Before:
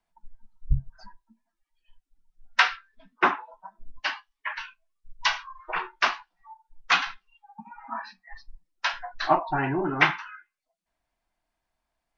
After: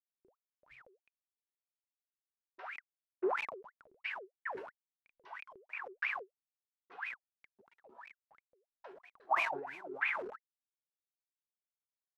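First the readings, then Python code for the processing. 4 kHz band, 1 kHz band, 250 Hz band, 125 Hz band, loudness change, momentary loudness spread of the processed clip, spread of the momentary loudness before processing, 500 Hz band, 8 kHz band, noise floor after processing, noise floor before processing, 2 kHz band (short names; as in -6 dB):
-22.5 dB, -13.5 dB, -15.0 dB, under -35 dB, -12.0 dB, 21 LU, 17 LU, -9.0 dB, n/a, under -85 dBFS, -83 dBFS, -12.5 dB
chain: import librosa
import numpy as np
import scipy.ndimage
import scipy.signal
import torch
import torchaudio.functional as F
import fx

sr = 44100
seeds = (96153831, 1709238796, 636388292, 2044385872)

p1 = fx.delta_hold(x, sr, step_db=-34.5)
p2 = fx.rider(p1, sr, range_db=4, speed_s=0.5)
p3 = p1 + F.gain(torch.from_numpy(p2), 0.0).numpy()
p4 = fx.wah_lfo(p3, sr, hz=3.0, low_hz=370.0, high_hz=2500.0, q=21.0)
p5 = fx.sustainer(p4, sr, db_per_s=57.0)
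y = F.gain(torch.from_numpy(p5), -6.5).numpy()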